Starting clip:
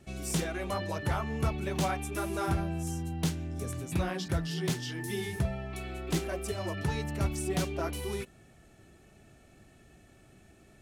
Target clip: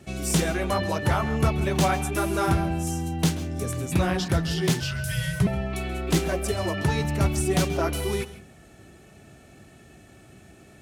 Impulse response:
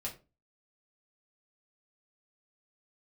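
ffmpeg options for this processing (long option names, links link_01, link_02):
-filter_complex "[0:a]asplit=2[link_01][link_02];[1:a]atrim=start_sample=2205,asetrate=52920,aresample=44100,adelay=131[link_03];[link_02][link_03]afir=irnorm=-1:irlink=0,volume=-12.5dB[link_04];[link_01][link_04]amix=inputs=2:normalize=0,asettb=1/sr,asplit=3[link_05][link_06][link_07];[link_05]atrim=end=4.804[link_08];[link_06]atrim=start=4.8:end=5.47,asetpts=PTS-STARTPTS,afade=type=in:duration=0.004:curve=qsin,afade=type=out:start_time=0.666:duration=0.004:curve=qsin,afreqshift=-260[link_09];[link_07]atrim=start=5.466[link_10];[link_08][link_09]acrossfade=duration=0.004:curve1=hsin:curve2=qsin[link_11];[link_11][link_10]acrossfade=duration=0.004:curve1=qsin:curve2=hsin,highpass=62,volume=8dB"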